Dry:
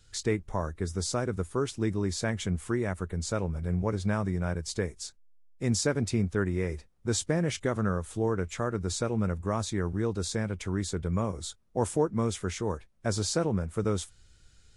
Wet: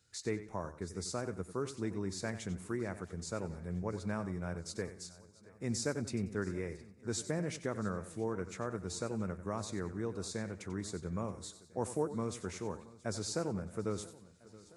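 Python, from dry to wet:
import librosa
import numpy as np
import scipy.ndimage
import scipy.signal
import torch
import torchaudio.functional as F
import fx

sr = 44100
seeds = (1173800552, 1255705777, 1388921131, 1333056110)

y = scipy.signal.sosfilt(scipy.signal.butter(2, 110.0, 'highpass', fs=sr, output='sos'), x)
y = fx.peak_eq(y, sr, hz=3200.0, db=-8.0, octaves=0.27)
y = fx.echo_feedback(y, sr, ms=675, feedback_pct=54, wet_db=-20.5)
y = fx.echo_warbled(y, sr, ms=92, feedback_pct=30, rate_hz=2.8, cents=71, wet_db=-13.0)
y = y * 10.0 ** (-8.0 / 20.0)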